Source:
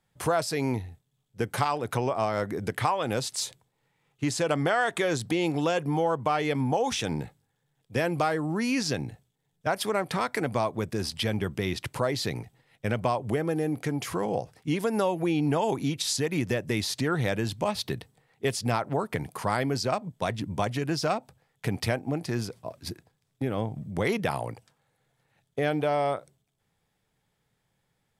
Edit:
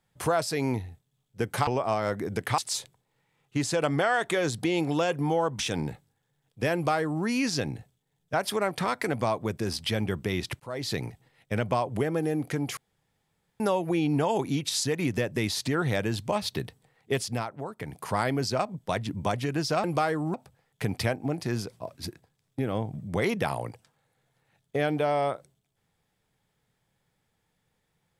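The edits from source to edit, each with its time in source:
1.67–1.98 s: delete
2.89–3.25 s: delete
6.26–6.92 s: delete
8.07–8.57 s: copy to 21.17 s
11.93–12.26 s: fade in
14.10–14.93 s: room tone
18.51–19.44 s: dip -8.5 dB, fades 0.32 s

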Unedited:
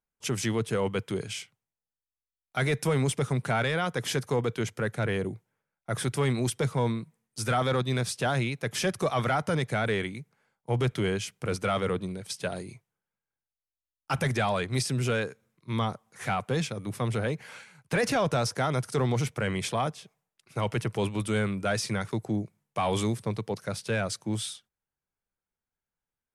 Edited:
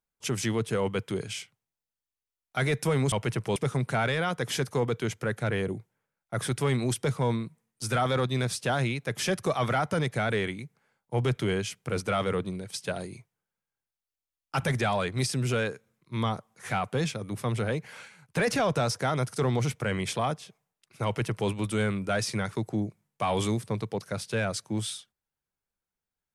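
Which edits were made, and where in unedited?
20.61–21.05 s: copy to 3.12 s

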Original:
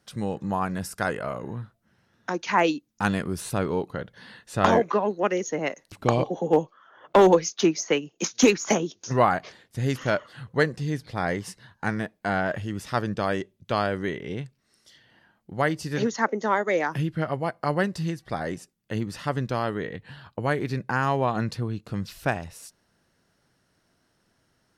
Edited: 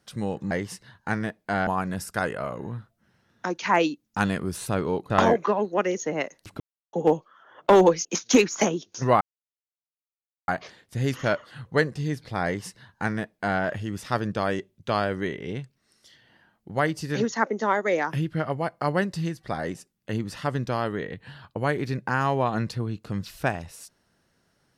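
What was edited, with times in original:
3.94–4.56 s: delete
6.06–6.39 s: mute
7.51–8.14 s: delete
9.30 s: insert silence 1.27 s
11.27–12.43 s: copy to 0.51 s

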